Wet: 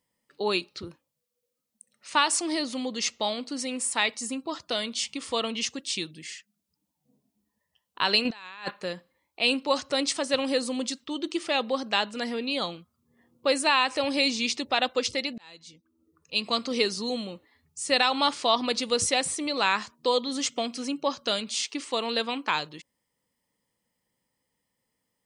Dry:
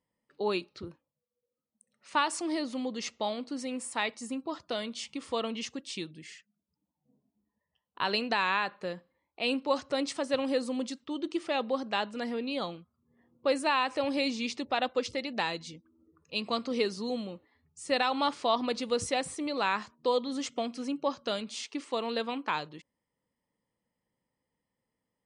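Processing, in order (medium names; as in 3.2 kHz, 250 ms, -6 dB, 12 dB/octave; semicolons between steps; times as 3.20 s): treble shelf 2.3 kHz +10 dB; 8.25–8.71 s: compressor with a negative ratio -35 dBFS, ratio -0.5; 15.38–16.63 s: fade in; trim +2 dB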